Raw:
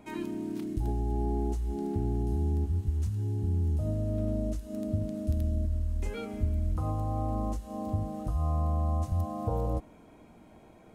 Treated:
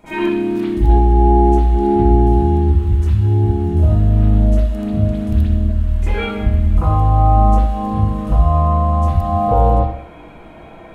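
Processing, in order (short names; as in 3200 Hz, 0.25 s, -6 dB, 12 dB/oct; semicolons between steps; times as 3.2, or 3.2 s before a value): bell 220 Hz -7.5 dB 2.6 oct; reverb RT60 0.55 s, pre-delay 37 ms, DRR -15 dB; gain +5.5 dB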